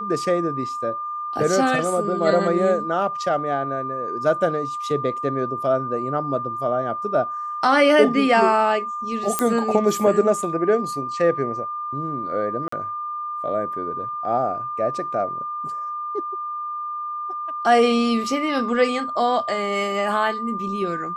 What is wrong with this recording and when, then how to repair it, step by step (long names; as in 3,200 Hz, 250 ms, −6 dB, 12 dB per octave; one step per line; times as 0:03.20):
whistle 1,200 Hz −26 dBFS
0:09.39: click −5 dBFS
0:12.68–0:12.72: drop-out 44 ms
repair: click removal
notch filter 1,200 Hz, Q 30
repair the gap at 0:12.68, 44 ms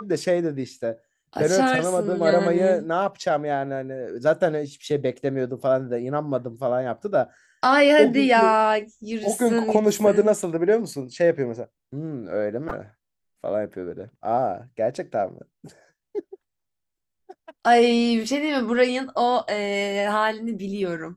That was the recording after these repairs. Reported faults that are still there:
none of them is left